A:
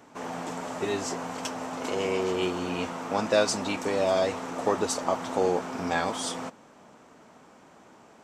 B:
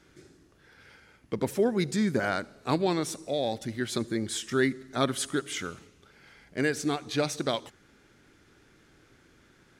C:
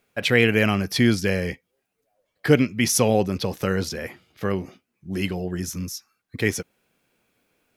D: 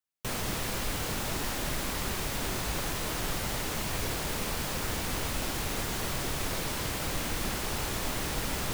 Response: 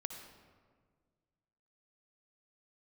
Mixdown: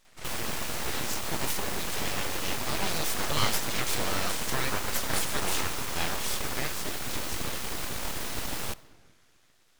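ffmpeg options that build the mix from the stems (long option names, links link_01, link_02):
-filter_complex "[0:a]highpass=frequency=1400:poles=1,adelay=50,volume=3dB[link_01];[1:a]highpass=210,highshelf=frequency=2000:gain=10.5,alimiter=limit=-20.5dB:level=0:latency=1,volume=1.5dB,asplit=2[link_02][link_03];[link_03]volume=-18.5dB[link_04];[2:a]volume=-20dB,asplit=2[link_05][link_06];[3:a]volume=-0.5dB,asplit=2[link_07][link_08];[link_08]volume=-11dB[link_09];[link_06]apad=whole_len=431808[link_10];[link_02][link_10]sidechaingate=range=-10dB:threshold=-55dB:ratio=16:detection=peak[link_11];[4:a]atrim=start_sample=2205[link_12];[link_04][link_09]amix=inputs=2:normalize=0[link_13];[link_13][link_12]afir=irnorm=-1:irlink=0[link_14];[link_01][link_11][link_05][link_07][link_14]amix=inputs=5:normalize=0,aeval=exprs='abs(val(0))':channel_layout=same"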